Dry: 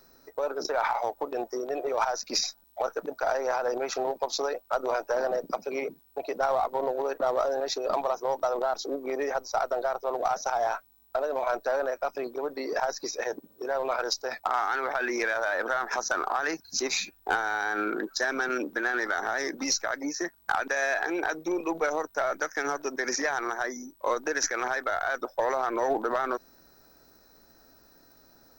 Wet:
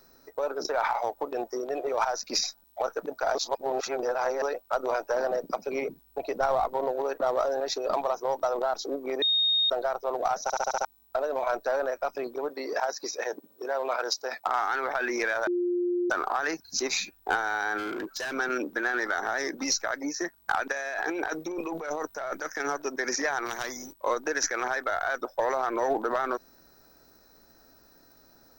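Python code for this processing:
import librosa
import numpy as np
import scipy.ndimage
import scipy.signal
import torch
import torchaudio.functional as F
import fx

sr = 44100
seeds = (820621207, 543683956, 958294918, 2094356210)

y = fx.backlash(x, sr, play_db=-56.0, at=(1.62, 2.14))
y = fx.low_shelf(y, sr, hz=140.0, db=9.5, at=(5.66, 6.74))
y = fx.bessel_highpass(y, sr, hz=260.0, order=2, at=(12.49, 14.47))
y = fx.clip_hard(y, sr, threshold_db=-30.0, at=(17.77, 18.32), fade=0.02)
y = fx.over_compress(y, sr, threshold_db=-32.0, ratio=-1.0, at=(20.72, 22.6))
y = fx.spectral_comp(y, sr, ratio=2.0, at=(23.45, 23.92), fade=0.02)
y = fx.edit(y, sr, fx.reverse_span(start_s=3.35, length_s=1.07),
    fx.bleep(start_s=9.22, length_s=0.48, hz=3710.0, db=-21.0),
    fx.stutter_over(start_s=10.43, slice_s=0.07, count=6),
    fx.bleep(start_s=15.47, length_s=0.63, hz=353.0, db=-24.0), tone=tone)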